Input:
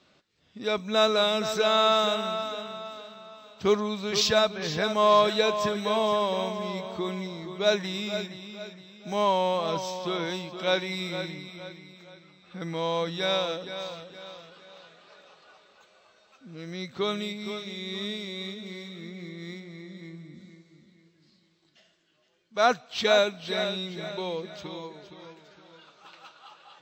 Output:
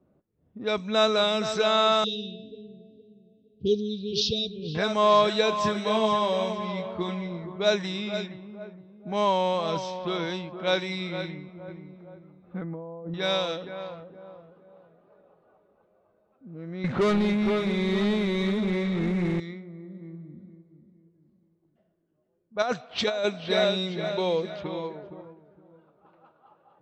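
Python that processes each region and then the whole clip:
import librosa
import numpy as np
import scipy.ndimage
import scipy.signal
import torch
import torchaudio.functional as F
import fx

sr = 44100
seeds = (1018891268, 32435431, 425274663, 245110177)

y = fx.chain(x, sr, fx.brickwall_bandstop(low_hz=710.0, high_hz=2300.0),
    fx.peak_eq(hz=430.0, db=5.5, octaves=0.29),
    fx.fixed_phaser(hz=2300.0, stages=6), at=(2.04, 4.75))
y = fx.chain(y, sr, fx.backlash(play_db=-52.5),
    fx.doubler(ms=23.0, db=-5.5), at=(5.5, 7.56))
y = fx.chain(y, sr, fx.env_lowpass_down(base_hz=660.0, full_db=-29.5),
    fx.over_compress(threshold_db=-37.0, ratio=-1.0), at=(11.68, 13.14))
y = fx.chain(y, sr, fx.zero_step(step_db=-42.0),
    fx.lowpass(hz=1900.0, slope=12),
    fx.leveller(passes=3), at=(16.84, 19.4))
y = fx.chain(y, sr, fx.highpass(hz=58.0, slope=12),
    fx.peak_eq(hz=560.0, db=4.5, octaves=0.85),
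    fx.over_compress(threshold_db=-24.0, ratio=-1.0), at=(22.62, 25.22))
y = scipy.signal.sosfilt(scipy.signal.butter(2, 9300.0, 'lowpass', fs=sr, output='sos'), y)
y = fx.env_lowpass(y, sr, base_hz=530.0, full_db=-23.5)
y = fx.low_shelf(y, sr, hz=190.0, db=4.0)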